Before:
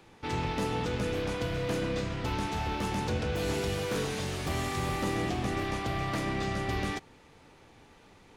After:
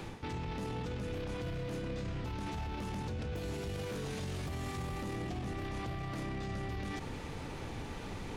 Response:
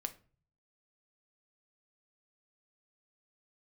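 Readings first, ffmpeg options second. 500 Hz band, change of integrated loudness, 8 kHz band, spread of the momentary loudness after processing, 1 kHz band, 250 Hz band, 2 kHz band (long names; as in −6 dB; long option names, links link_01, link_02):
−8.5 dB, −7.5 dB, −9.5 dB, 4 LU, −9.0 dB, −6.5 dB, −9.5 dB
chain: -af "lowshelf=frequency=230:gain=8.5,areverse,acompressor=threshold=-39dB:ratio=6,areverse,alimiter=level_in=18.5dB:limit=-24dB:level=0:latency=1:release=29,volume=-18.5dB,volume=11dB"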